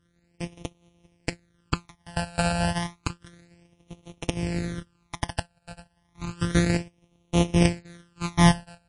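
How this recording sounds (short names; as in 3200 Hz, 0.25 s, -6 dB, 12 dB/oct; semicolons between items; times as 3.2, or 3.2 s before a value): a buzz of ramps at a fixed pitch in blocks of 256 samples; phasing stages 12, 0.31 Hz, lowest notch 350–1600 Hz; MP3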